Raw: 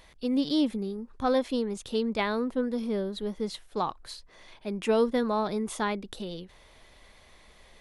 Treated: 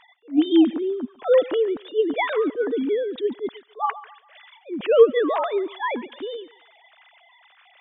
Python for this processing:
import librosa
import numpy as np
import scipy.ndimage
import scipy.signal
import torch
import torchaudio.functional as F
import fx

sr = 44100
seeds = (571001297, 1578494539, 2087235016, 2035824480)

y = fx.sine_speech(x, sr)
y = fx.echo_thinned(y, sr, ms=142, feedback_pct=45, hz=850.0, wet_db=-16)
y = fx.attack_slew(y, sr, db_per_s=290.0)
y = y * librosa.db_to_amplitude(8.5)